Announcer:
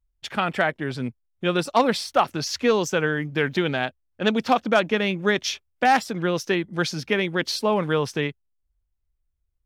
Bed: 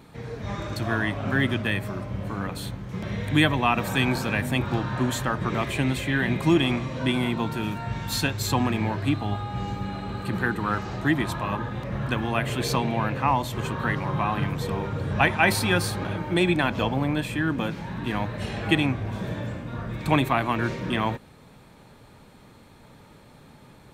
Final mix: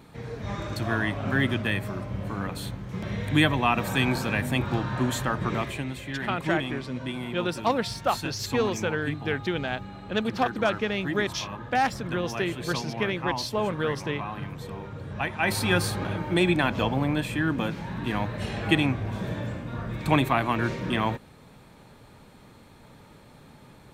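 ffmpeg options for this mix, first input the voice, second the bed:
-filter_complex "[0:a]adelay=5900,volume=-5.5dB[a];[1:a]volume=7.5dB,afade=t=out:st=5.53:d=0.32:silence=0.398107,afade=t=in:st=15.32:d=0.4:silence=0.375837[b];[a][b]amix=inputs=2:normalize=0"

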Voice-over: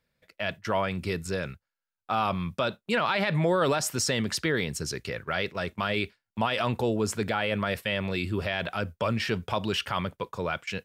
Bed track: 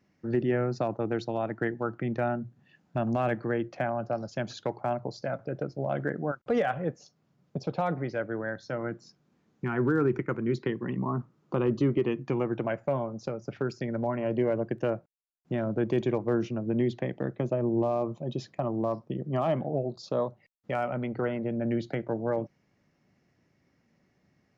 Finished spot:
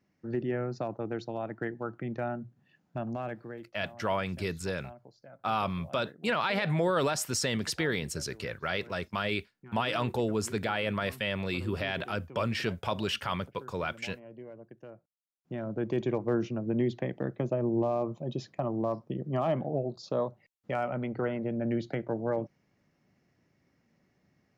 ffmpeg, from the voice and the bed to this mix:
-filter_complex "[0:a]adelay=3350,volume=-3dB[a];[1:a]volume=13dB,afade=t=out:st=2.86:d=0.88:silence=0.188365,afade=t=in:st=14.92:d=1.33:silence=0.125893[b];[a][b]amix=inputs=2:normalize=0"

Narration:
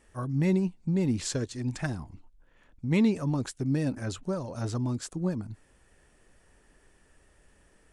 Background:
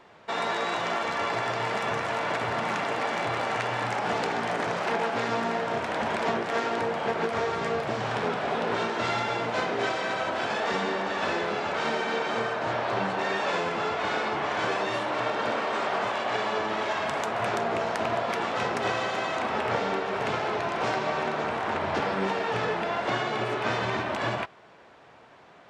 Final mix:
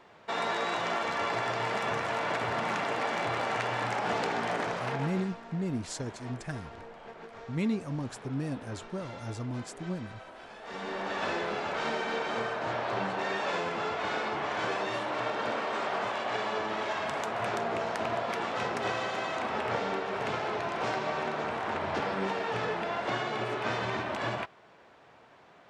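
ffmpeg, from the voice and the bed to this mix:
-filter_complex "[0:a]adelay=4650,volume=-6dB[a];[1:a]volume=12.5dB,afade=t=out:st=4.55:d=0.8:silence=0.149624,afade=t=in:st=10.62:d=0.5:silence=0.177828[b];[a][b]amix=inputs=2:normalize=0"

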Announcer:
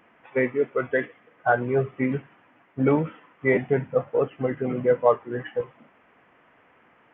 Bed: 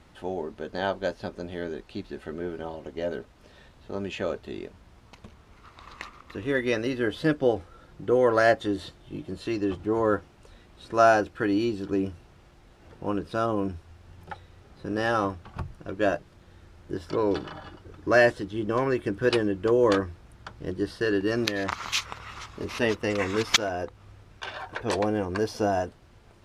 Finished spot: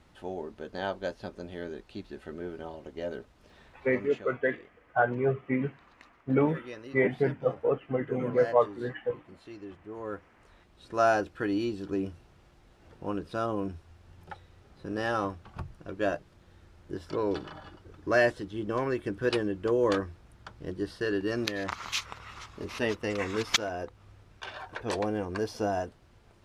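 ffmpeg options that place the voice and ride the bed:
-filter_complex "[0:a]adelay=3500,volume=-4dB[a];[1:a]volume=7dB,afade=t=out:st=3.72:d=0.55:silence=0.266073,afade=t=in:st=9.92:d=1.28:silence=0.251189[b];[a][b]amix=inputs=2:normalize=0"

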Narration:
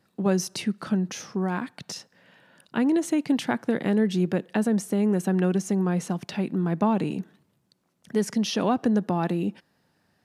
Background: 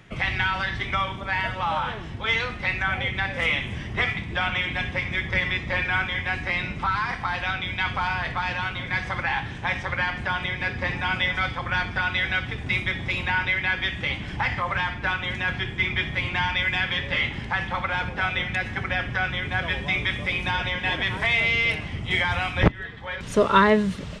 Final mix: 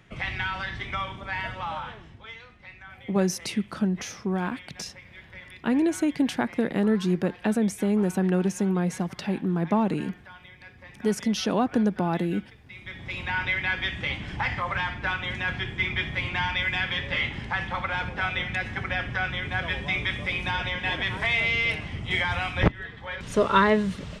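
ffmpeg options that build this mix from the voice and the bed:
-filter_complex "[0:a]adelay=2900,volume=-0.5dB[a];[1:a]volume=12.5dB,afade=t=out:st=1.55:d=0.8:silence=0.177828,afade=t=in:st=12.75:d=0.74:silence=0.125893[b];[a][b]amix=inputs=2:normalize=0"

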